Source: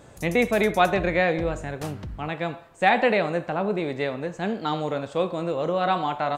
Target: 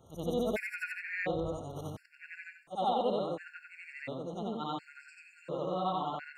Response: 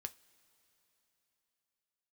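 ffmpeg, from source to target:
-af "afftfilt=real='re':imag='-im':win_size=8192:overlap=0.75,afftfilt=real='re*gt(sin(2*PI*0.71*pts/sr)*(1-2*mod(floor(b*sr/1024/1400),2)),0)':imag='im*gt(sin(2*PI*0.71*pts/sr)*(1-2*mod(floor(b*sr/1024/1400),2)),0)':win_size=1024:overlap=0.75,volume=-4.5dB"

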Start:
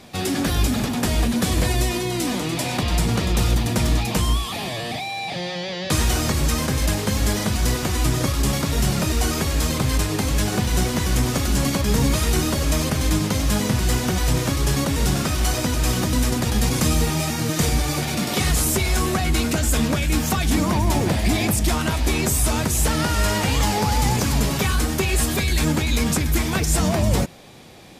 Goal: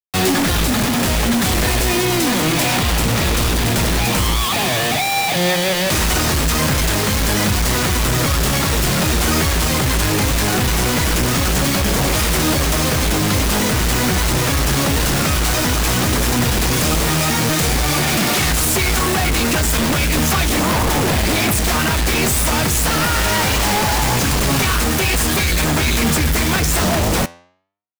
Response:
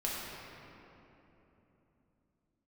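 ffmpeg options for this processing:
-af "equalizer=f=1.6k:t=o:w=2:g=4.5,alimiter=limit=-11.5dB:level=0:latency=1:release=404,acrusher=bits=4:mix=0:aa=0.000001,aeval=exprs='0.668*sin(PI/2*6.31*val(0)/0.668)':c=same,flanger=delay=5.2:depth=8.1:regen=88:speed=0.17:shape=sinusoidal,volume=-5dB"

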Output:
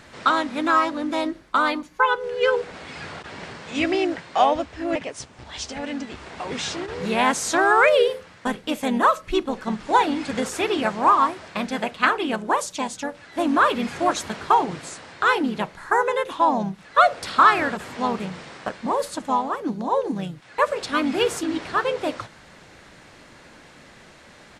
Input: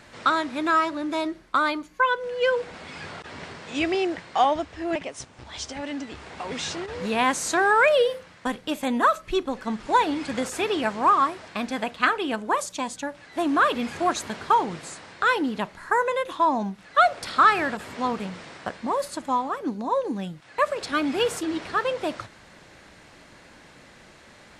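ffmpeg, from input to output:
-filter_complex "[0:a]asplit=2[a][b];[b]asetrate=37084,aresample=44100,atempo=1.18921,volume=-7dB[c];[a][c]amix=inputs=2:normalize=0,volume=1.5dB"

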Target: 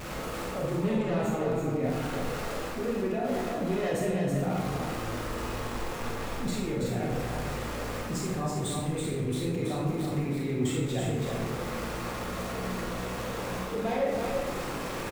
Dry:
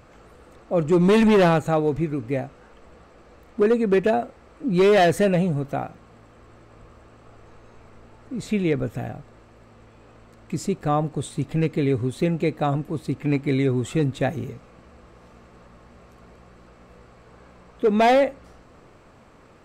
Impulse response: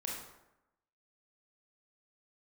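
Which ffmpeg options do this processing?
-filter_complex "[0:a]aeval=exprs='val(0)+0.5*0.0168*sgn(val(0))':c=same,alimiter=limit=-20dB:level=0:latency=1:release=54,areverse,acompressor=threshold=-32dB:ratio=10,areverse,atempo=1.3,flanger=delay=4.7:depth=5.6:regen=-51:speed=1.1:shape=triangular,aecho=1:1:328:0.596[a];[1:a]atrim=start_sample=2205[b];[a][b]afir=irnorm=-1:irlink=0,volume=7.5dB"

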